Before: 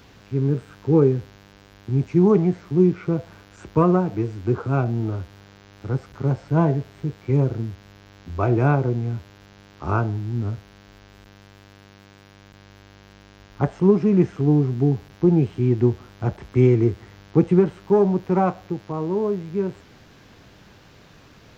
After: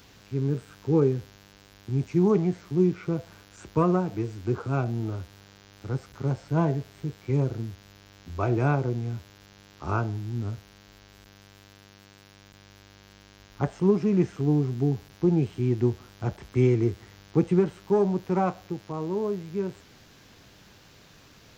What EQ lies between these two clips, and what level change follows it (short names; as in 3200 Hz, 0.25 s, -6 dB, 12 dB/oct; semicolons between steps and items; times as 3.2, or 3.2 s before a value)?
high shelf 3700 Hz +10 dB; -5.5 dB